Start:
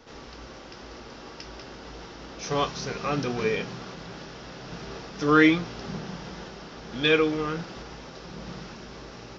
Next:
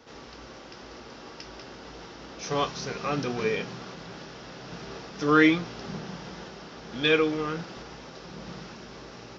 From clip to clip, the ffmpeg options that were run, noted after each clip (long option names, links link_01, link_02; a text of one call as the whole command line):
ffmpeg -i in.wav -af "highpass=frequency=81:poles=1,volume=-1dB" out.wav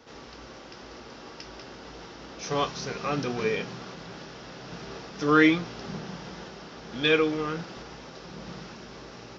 ffmpeg -i in.wav -af anull out.wav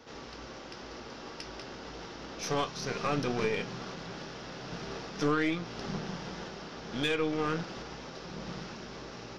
ffmpeg -i in.wav -af "alimiter=limit=-20dB:level=0:latency=1:release=353,aeval=exprs='0.1*(cos(1*acos(clip(val(0)/0.1,-1,1)))-cos(1*PI/2))+0.01*(cos(4*acos(clip(val(0)/0.1,-1,1)))-cos(4*PI/2))':channel_layout=same" out.wav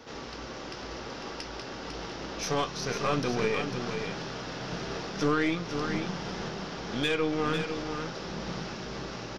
ffmpeg -i in.wav -filter_complex "[0:a]asplit=2[link_01][link_02];[link_02]alimiter=level_in=5dB:limit=-24dB:level=0:latency=1:release=378,volume=-5dB,volume=-3dB[link_03];[link_01][link_03]amix=inputs=2:normalize=0,aecho=1:1:500:0.447" out.wav